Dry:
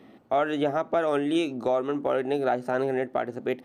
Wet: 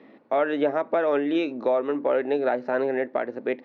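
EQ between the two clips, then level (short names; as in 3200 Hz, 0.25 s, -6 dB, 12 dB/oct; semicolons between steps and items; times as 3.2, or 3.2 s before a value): air absorption 280 m; speaker cabinet 340–6500 Hz, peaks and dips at 370 Hz -5 dB, 740 Hz -9 dB, 1300 Hz -7 dB, 3100 Hz -7 dB; +7.5 dB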